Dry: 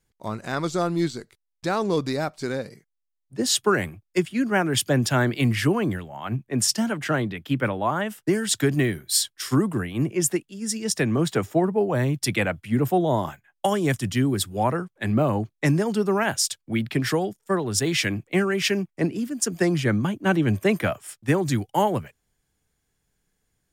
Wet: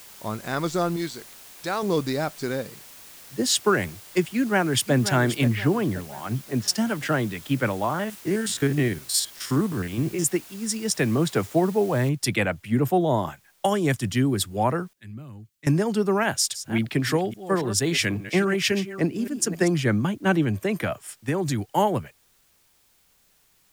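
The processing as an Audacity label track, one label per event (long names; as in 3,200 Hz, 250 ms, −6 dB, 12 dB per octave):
0.960000	1.830000	low-shelf EQ 450 Hz −9 dB
4.330000	4.940000	delay throw 530 ms, feedback 45%, level −10.5 dB
5.460000	6.680000	high-frequency loss of the air 280 metres
7.840000	10.250000	spectrum averaged block by block every 50 ms
12.090000	12.090000	noise floor change −46 dB −63 dB
14.930000	15.670000	guitar amp tone stack bass-middle-treble 6-0-2
16.230000	19.680000	delay that plays each chunk backwards 277 ms, level −12 dB
20.440000	21.590000	downward compressor 3 to 1, threshold −21 dBFS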